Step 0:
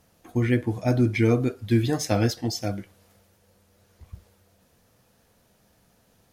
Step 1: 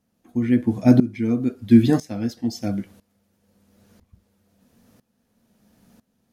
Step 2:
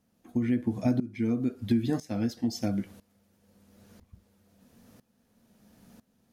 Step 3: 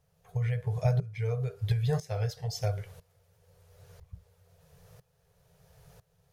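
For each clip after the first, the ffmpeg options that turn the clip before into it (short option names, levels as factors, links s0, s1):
-af "equalizer=f=230:t=o:w=0.72:g=13.5,aeval=exprs='val(0)*pow(10,-19*if(lt(mod(-1*n/s,1),2*abs(-1)/1000),1-mod(-1*n/s,1)/(2*abs(-1)/1000),(mod(-1*n/s,1)-2*abs(-1)/1000)/(1-2*abs(-1)/1000))/20)':c=same,volume=1.58"
-af "acompressor=threshold=0.0562:ratio=4"
-af "afftfilt=real='re*(1-between(b*sr/4096,180,390))':imag='im*(1-between(b*sr/4096,180,390))':win_size=4096:overlap=0.75,lowshelf=f=380:g=7.5"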